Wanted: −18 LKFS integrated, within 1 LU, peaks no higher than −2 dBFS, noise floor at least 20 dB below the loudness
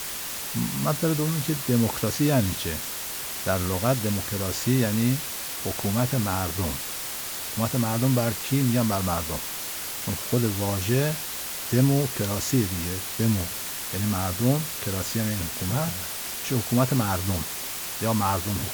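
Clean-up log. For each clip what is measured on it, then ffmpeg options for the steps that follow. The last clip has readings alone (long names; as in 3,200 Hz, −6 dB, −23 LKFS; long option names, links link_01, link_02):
background noise floor −33 dBFS; target noise floor −46 dBFS; integrated loudness −25.5 LKFS; sample peak −9.0 dBFS; target loudness −18.0 LKFS
→ -af "afftdn=noise_reduction=13:noise_floor=-33"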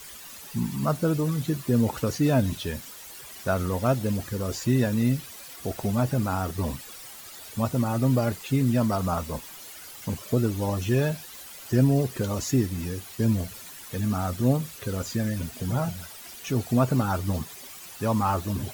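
background noise floor −44 dBFS; target noise floor −47 dBFS
→ -af "afftdn=noise_reduction=6:noise_floor=-44"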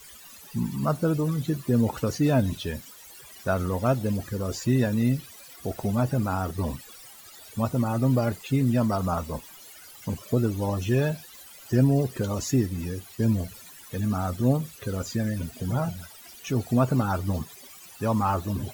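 background noise floor −48 dBFS; integrated loudness −26.5 LKFS; sample peak −9.5 dBFS; target loudness −18.0 LKFS
→ -af "volume=8.5dB,alimiter=limit=-2dB:level=0:latency=1"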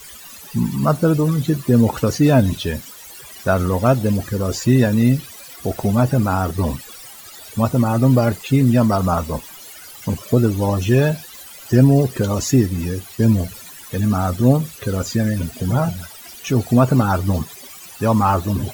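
integrated loudness −18.0 LKFS; sample peak −2.0 dBFS; background noise floor −39 dBFS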